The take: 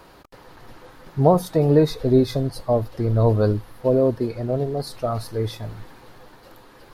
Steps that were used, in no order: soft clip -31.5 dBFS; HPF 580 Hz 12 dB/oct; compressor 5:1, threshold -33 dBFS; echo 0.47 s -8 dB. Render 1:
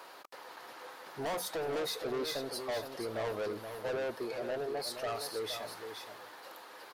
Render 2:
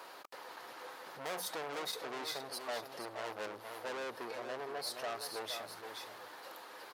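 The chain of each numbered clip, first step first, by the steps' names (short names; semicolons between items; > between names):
HPF > soft clip > compressor > echo; soft clip > echo > compressor > HPF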